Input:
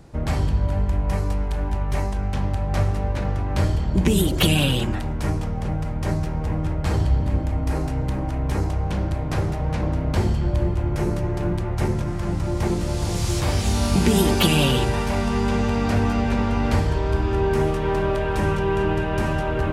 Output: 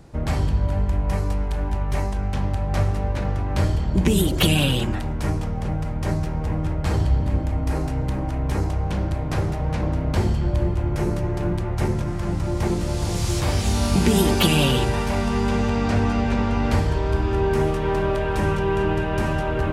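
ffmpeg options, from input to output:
ffmpeg -i in.wav -filter_complex "[0:a]asettb=1/sr,asplit=3[link_01][link_02][link_03];[link_01]atrim=end=15.694[link_04];[link_02]atrim=start=15.69:end=16.7,asetpts=PTS-STARTPTS,afade=type=in:duration=0.004:curve=qsin,afade=type=out:start_time=1.006:duration=0.004:curve=qsin,lowpass=9100[link_05];[link_03]atrim=start=16.696[link_06];[link_04][link_05]acrossfade=duration=0.004:curve1=hsin:curve2=qsin[link_07];[link_07][link_06]acrossfade=duration=0.004:curve1=qsin:curve2=hsin" out.wav

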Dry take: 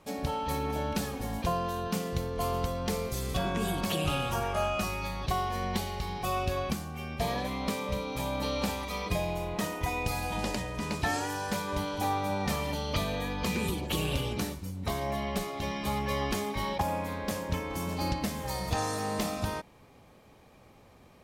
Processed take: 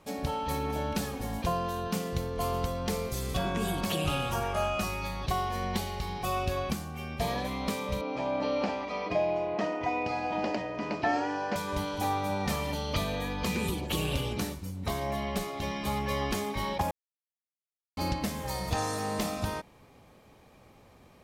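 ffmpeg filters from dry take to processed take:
ffmpeg -i in.wav -filter_complex "[0:a]asettb=1/sr,asplit=3[link_01][link_02][link_03];[link_01]atrim=end=8.014[link_04];[link_02]atrim=start=8.01:end=11.56,asetpts=PTS-STARTPTS,afade=type=in:duration=0.004:curve=qsin,afade=type=out:start_time=3.546:duration=0.004:curve=qsin,highpass=170,equalizer=frequency=170:width_type=q:width=4:gain=-4,equalizer=frequency=310:width_type=q:width=4:gain=6,equalizer=frequency=660:width_type=q:width=4:gain=9,equalizer=frequency=3700:width_type=q:width=4:gain=-10,lowpass=frequency=4700:width=0.5412,lowpass=frequency=4700:width=1.3066[link_05];[link_03]atrim=start=11.556[link_06];[link_04][link_05]acrossfade=duration=0.004:curve1=hsin:curve2=qsin[link_07];[link_07][link_06]acrossfade=duration=0.004:curve1=qsin:curve2=hsin,asplit=3[link_08][link_09][link_10];[link_08]atrim=end=16.91,asetpts=PTS-STARTPTS,afade=type=out:start_time=16.906:duration=0.004:curve=hsin[link_11];[link_09]atrim=start=16.91:end=17.97,asetpts=PTS-STARTPTS,volume=0[link_12];[link_10]atrim=start=17.97,asetpts=PTS-STARTPTS,afade=type=in:duration=0.004:curve=hsin[link_13];[link_11][link_12][link_13]concat=n=3:v=0:a=1" out.wav

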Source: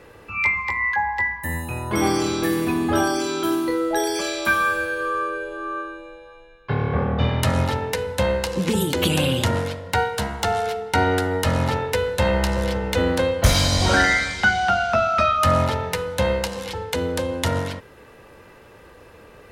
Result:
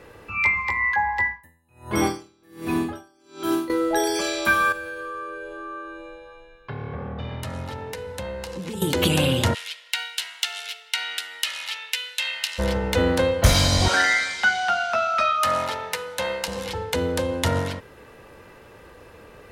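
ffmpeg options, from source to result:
ffmpeg -i in.wav -filter_complex "[0:a]asettb=1/sr,asplit=3[link_01][link_02][link_03];[link_01]atrim=end=1.234[link_04];[link_02]atrim=start=1.23:end=3.7,asetpts=PTS-STARTPTS,afade=type=in:duration=0.004:curve=qsin,afade=type=out:start_time=2.466:duration=0.004:curve=qsin,aeval=exprs='val(0)*pow(10,-38*(0.5-0.5*cos(2*PI*1.3*n/s))/20)':channel_layout=same[link_05];[link_03]atrim=start=3.696[link_06];[link_04][link_05]acrossfade=duration=0.004:curve1=hsin:curve2=qsin[link_07];[link_07][link_06]acrossfade=duration=0.004:curve1=qsin:curve2=hsin,asettb=1/sr,asplit=3[link_08][link_09][link_10];[link_08]atrim=end=4.724[link_11];[link_09]atrim=start=4.72:end=8.82,asetpts=PTS-STARTPTS,afade=type=in:duration=0.004:curve=qsin,afade=type=out:start_time=4.096:duration=0.004:curve=qsin,acompressor=threshold=-34dB:ratio=2.5:attack=3.2:release=140:knee=1:detection=peak[link_12];[link_10]atrim=start=8.816[link_13];[link_11][link_12]acrossfade=duration=0.004:curve1=hsin:curve2=qsin[link_14];[link_14][link_13]acrossfade=duration=0.004:curve1=qsin:curve2=hsin,asplit=3[link_15][link_16][link_17];[link_15]afade=type=out:start_time=9.53:duration=0.02[link_18];[link_16]highpass=frequency=2800:width_type=q:width=2.1,afade=type=in:start_time=9.53:duration=0.02,afade=type=out:start_time=12.58:duration=0.02[link_19];[link_17]afade=type=in:start_time=12.58:duration=0.02[link_20];[link_18][link_19][link_20]amix=inputs=3:normalize=0,asettb=1/sr,asplit=3[link_21][link_22][link_23];[link_21]atrim=end=13.884[link_24];[link_22]atrim=start=13.88:end=16.48,asetpts=PTS-STARTPTS,afade=type=in:duration=0.004:curve=qsin,afade=type=out:start_time=2.596:duration=0.004:curve=qsin,highpass=frequency=960:poles=1[link_25];[link_23]atrim=start=16.476[link_26];[link_24][link_25]acrossfade=duration=0.004:curve1=hsin:curve2=qsin[link_27];[link_27][link_26]acrossfade=duration=0.004:curve1=qsin:curve2=hsin" out.wav

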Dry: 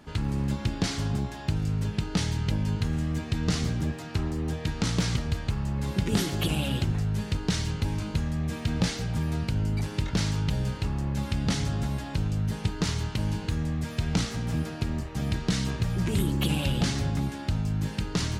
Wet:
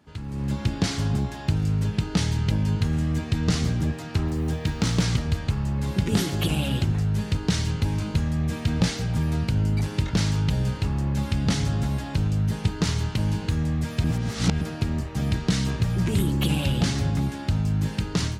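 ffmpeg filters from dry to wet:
ffmpeg -i in.wav -filter_complex "[0:a]asettb=1/sr,asplit=3[link_01][link_02][link_03];[link_01]atrim=end=4.284[link_04];[link_02]atrim=start=4.28:end=4.97,asetpts=PTS-STARTPTS,afade=type=in:duration=0.004:curve=qsin,afade=type=out:start_time=0.686:duration=0.004:curve=qsin,acrusher=bits=9:mode=log:mix=0:aa=0.000001[link_05];[link_03]atrim=start=4.966[link_06];[link_04][link_05]acrossfade=duration=0.004:curve1=hsin:curve2=qsin[link_07];[link_07][link_06]acrossfade=duration=0.004:curve1=qsin:curve2=hsin,asplit=3[link_08][link_09][link_10];[link_08]atrim=end=14.042[link_11];[link_09]atrim=start=14.038:end=14.612,asetpts=PTS-STARTPTS,areverse[link_12];[link_10]atrim=start=14.608[link_13];[link_11][link_12]acrossfade=duration=0.004:curve1=hsin:curve2=hsin[link_14];[link_14][link_13]acrossfade=duration=0.004:curve1=hsin:curve2=hsin,dynaudnorm=framelen=290:gausssize=3:maxgain=11.5dB,highpass=58,lowshelf=frequency=140:gain=4,volume=-8.5dB" out.wav

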